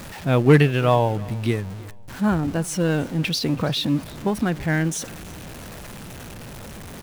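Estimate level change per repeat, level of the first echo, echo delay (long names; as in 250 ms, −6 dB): −7.5 dB, −23.0 dB, 325 ms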